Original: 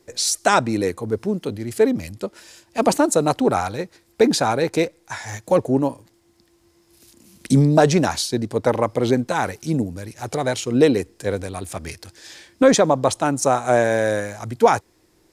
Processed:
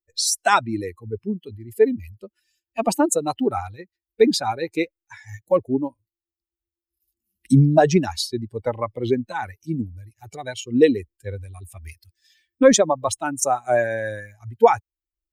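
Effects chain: expander on every frequency bin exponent 2; 11.82–13.85 s: treble shelf 11 kHz +11.5 dB; trim +3 dB

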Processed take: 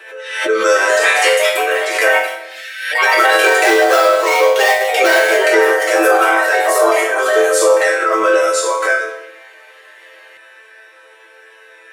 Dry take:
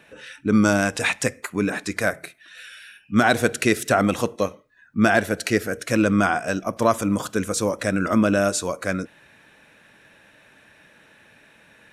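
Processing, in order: 3.68–5.46 s: dead-time distortion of 0.17 ms; rippled Chebyshev high-pass 340 Hz, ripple 6 dB; chord resonator A3 minor, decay 0.55 s; reverberation RT60 1.0 s, pre-delay 5 ms, DRR 5 dB; ever faster or slower copies 346 ms, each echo +3 st, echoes 2; loudness maximiser +33 dB; swell ahead of each attack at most 68 dB/s; trim -1 dB

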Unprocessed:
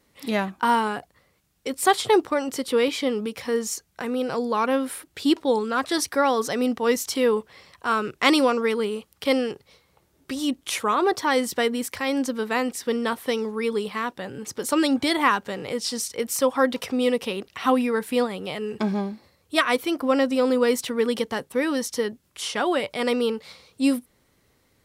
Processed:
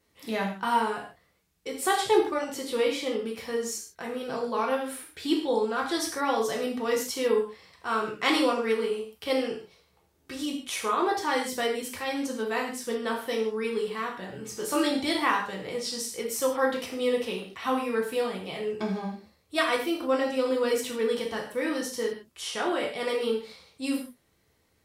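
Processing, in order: 14.30–14.91 s: doubling 24 ms -5 dB; gated-style reverb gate 180 ms falling, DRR -1.5 dB; trim -8 dB

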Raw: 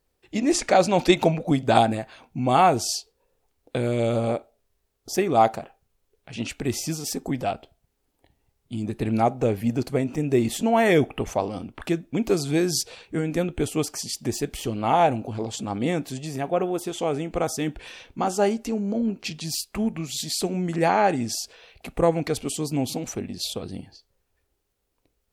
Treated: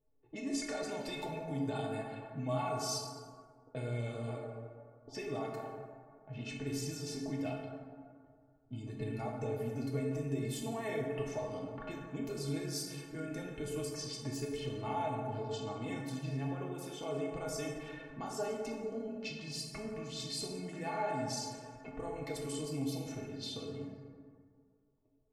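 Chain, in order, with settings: peak limiter -13 dBFS, peak gain reduction 9.5 dB; level-controlled noise filter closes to 650 Hz, open at -23 dBFS; compression 2.5:1, threshold -38 dBFS, peak gain reduction 13.5 dB; inharmonic resonator 130 Hz, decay 0.22 s, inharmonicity 0.03; plate-style reverb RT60 2 s, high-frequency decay 0.4×, DRR -1 dB; trim +4.5 dB

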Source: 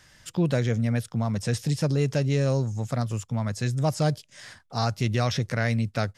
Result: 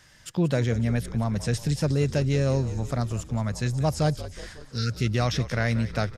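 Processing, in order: spectral replace 4.62–5.04 s, 520–1300 Hz; frequency-shifting echo 182 ms, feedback 64%, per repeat -54 Hz, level -14.5 dB

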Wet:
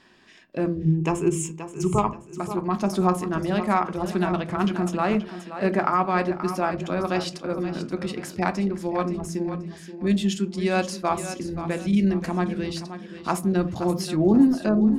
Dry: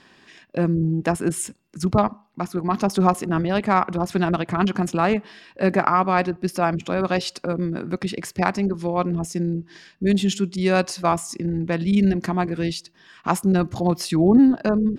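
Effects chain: 0.85–2.07 s: rippled EQ curve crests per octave 0.72, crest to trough 13 dB; thinning echo 528 ms, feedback 36%, high-pass 160 Hz, level -11 dB; on a send at -8 dB: reverberation RT60 0.35 s, pre-delay 3 ms; on the sum: trim -4.5 dB

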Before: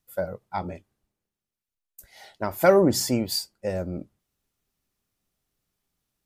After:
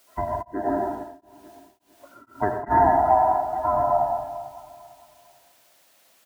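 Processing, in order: split-band scrambler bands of 500 Hz; steep low-pass 1.6 kHz 48 dB/octave; comb 3 ms, depth 64%; feedback delay 448 ms, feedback 35%, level -20 dB; compression 2.5:1, threshold -26 dBFS, peak gain reduction 12 dB; added noise white -69 dBFS; high-pass 100 Hz 12 dB/octave; bass shelf 200 Hz -7 dB; reverberation RT60 1.2 s, pre-delay 79 ms, DRR 1 dB; 0.41–2.70 s: tremolo of two beating tones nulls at 1.1 Hz -> 2.8 Hz; trim +9 dB

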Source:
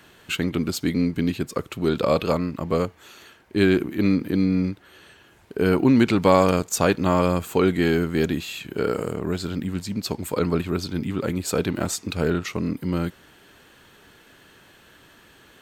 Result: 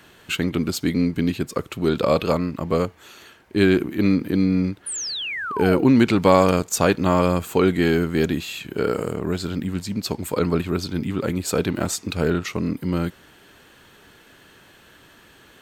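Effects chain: painted sound fall, 4.86–5.84 s, 420–10000 Hz -30 dBFS; trim +1.5 dB

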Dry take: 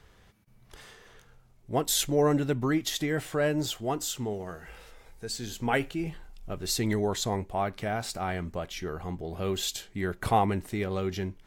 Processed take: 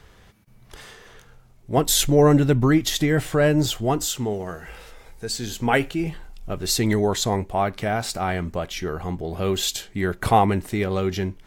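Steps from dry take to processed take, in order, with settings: 1.77–4.06 s: bass shelf 140 Hz +9.5 dB; trim +7 dB

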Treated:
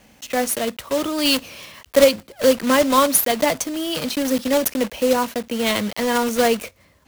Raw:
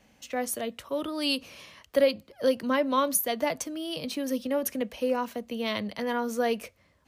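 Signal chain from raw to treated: block-companded coder 3-bit; trim +9 dB

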